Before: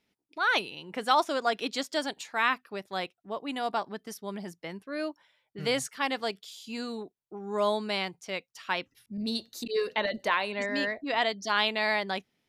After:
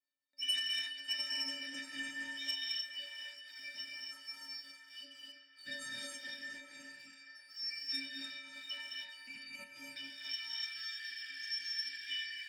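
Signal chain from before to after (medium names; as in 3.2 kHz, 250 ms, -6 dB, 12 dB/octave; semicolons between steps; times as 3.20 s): four frequency bands reordered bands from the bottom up 4321; RIAA curve playback; inharmonic resonator 270 Hz, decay 0.68 s, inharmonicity 0.03; gated-style reverb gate 320 ms rising, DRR -2.5 dB; spectral replace 11.06–12.04 s, 480–4000 Hz before; waveshaping leveller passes 1; graphic EQ 125/250/500/1000/2000/4000/8000 Hz +10/+7/-11/-10/+4/-6/+8 dB; band-passed feedback delay 420 ms, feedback 80%, band-pass 1.5 kHz, level -10 dB; high-pass sweep 580 Hz -> 1.7 kHz, 10.31–10.99 s; trim +7 dB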